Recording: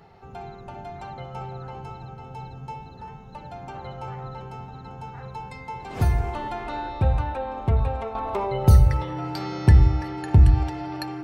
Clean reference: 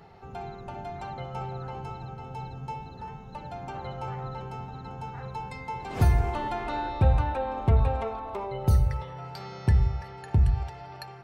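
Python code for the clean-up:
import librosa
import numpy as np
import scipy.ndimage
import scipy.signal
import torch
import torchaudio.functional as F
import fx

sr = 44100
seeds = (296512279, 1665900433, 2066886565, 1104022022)

y = fx.notch(x, sr, hz=310.0, q=30.0)
y = fx.gain(y, sr, db=fx.steps((0.0, 0.0), (8.15, -7.5)))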